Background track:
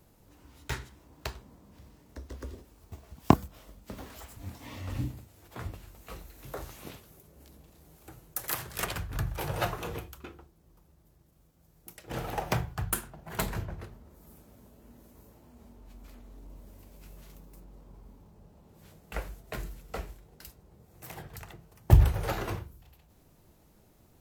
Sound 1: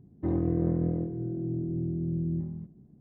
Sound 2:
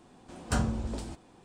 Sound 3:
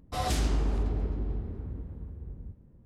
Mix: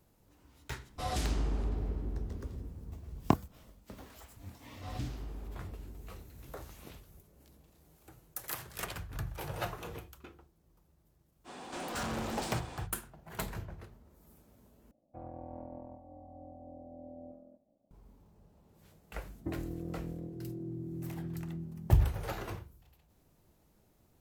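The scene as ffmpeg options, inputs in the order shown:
ffmpeg -i bed.wav -i cue0.wav -i cue1.wav -i cue2.wav -filter_complex "[3:a]asplit=2[link_01][link_02];[1:a]asplit=2[link_03][link_04];[0:a]volume=-6.5dB[link_05];[link_02]lowpass=6300[link_06];[2:a]asplit=2[link_07][link_08];[link_08]highpass=frequency=720:poles=1,volume=36dB,asoftclip=type=tanh:threshold=-16dB[link_09];[link_07][link_09]amix=inputs=2:normalize=0,lowpass=frequency=6500:poles=1,volume=-6dB[link_10];[link_03]aeval=exprs='val(0)*sin(2*PI*420*n/s)':channel_layout=same[link_11];[link_04]acompressor=threshold=-38dB:ratio=5:attack=41:release=604:knee=1:detection=peak[link_12];[link_05]asplit=2[link_13][link_14];[link_13]atrim=end=14.914[link_15];[link_11]atrim=end=3,asetpts=PTS-STARTPTS,volume=-16dB[link_16];[link_14]atrim=start=17.906[link_17];[link_01]atrim=end=2.85,asetpts=PTS-STARTPTS,volume=-5dB,afade=type=in:duration=0.004:curve=hsin,afade=type=out:start_time=2.846:duration=0.004:curve=hsin,adelay=860[link_18];[link_06]atrim=end=2.85,asetpts=PTS-STARTPTS,volume=-15.5dB,afade=type=in:duration=0.004:curve=hsin,afade=type=out:start_time=2.846:duration=0.004:curve=hsin,adelay=206829S[link_19];[link_10]atrim=end=1.44,asetpts=PTS-STARTPTS,volume=-14dB,afade=type=in:duration=0.05,afade=type=out:start_time=1.39:duration=0.05,adelay=11440[link_20];[link_12]atrim=end=3,asetpts=PTS-STARTPTS,volume=-1dB,afade=type=in:duration=0.004:curve=hsin,afade=type=out:start_time=2.996:duration=0.004:curve=hsin,adelay=19230[link_21];[link_15][link_16]acrossfade=duration=0.004:curve1=hsin:curve2=hsin[link_22];[link_22][link_17]acrossfade=duration=0.004:curve1=hsin:curve2=hsin[link_23];[link_23][link_18][link_19][link_20][link_21]amix=inputs=5:normalize=0" out.wav

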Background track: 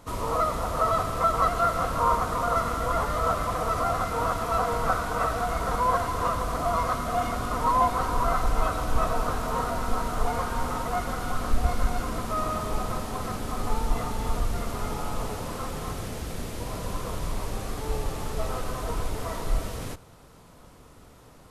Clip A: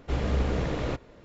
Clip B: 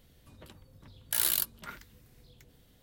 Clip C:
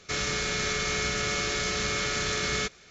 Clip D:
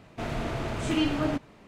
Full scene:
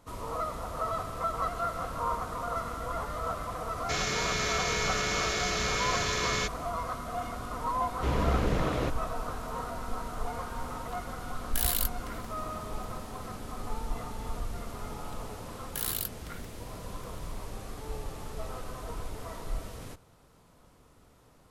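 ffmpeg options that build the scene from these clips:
ffmpeg -i bed.wav -i cue0.wav -i cue1.wav -i cue2.wav -filter_complex "[2:a]asplit=2[link_01][link_02];[0:a]volume=-8.5dB[link_03];[1:a]highpass=60[link_04];[link_02]dynaudnorm=framelen=140:gausssize=3:maxgain=8dB[link_05];[3:a]atrim=end=2.9,asetpts=PTS-STARTPTS,volume=-2dB,afade=type=in:duration=0.004:curve=hsin,afade=type=out:start_time=2.896:duration=0.004:curve=hsin,adelay=3800[link_06];[link_04]atrim=end=1.24,asetpts=PTS-STARTPTS,afade=type=in:duration=0.004:curve=hsin,afade=type=out:start_time=1.236:duration=0.004:curve=hsin,adelay=350154S[link_07];[link_01]atrim=end=2.82,asetpts=PTS-STARTPTS,volume=-2dB,afade=type=in:duration=0.004:curve=hsin,afade=type=out:start_time=2.816:duration=0.004:curve=hsin,adelay=10430[link_08];[link_05]atrim=end=2.82,asetpts=PTS-STARTPTS,volume=-9.5dB,afade=type=in:duration=0.004:curve=hsin,afade=type=out:start_time=2.816:duration=0.004:curve=hsin,adelay=14630[link_09];[link_03][link_06][link_07][link_08][link_09]amix=inputs=5:normalize=0" out.wav

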